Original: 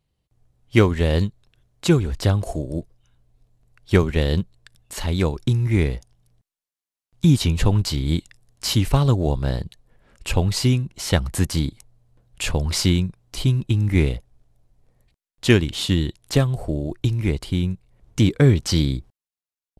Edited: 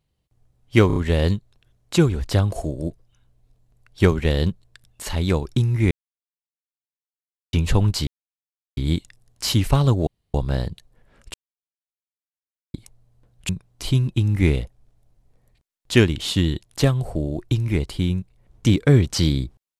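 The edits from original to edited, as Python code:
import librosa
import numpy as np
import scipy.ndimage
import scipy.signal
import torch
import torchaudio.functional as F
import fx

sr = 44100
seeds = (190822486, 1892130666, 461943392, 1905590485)

y = fx.edit(x, sr, fx.stutter(start_s=0.87, slice_s=0.03, count=4),
    fx.silence(start_s=5.82, length_s=1.62),
    fx.insert_silence(at_s=7.98, length_s=0.7),
    fx.insert_room_tone(at_s=9.28, length_s=0.27),
    fx.silence(start_s=10.28, length_s=1.4),
    fx.cut(start_s=12.43, length_s=0.59), tone=tone)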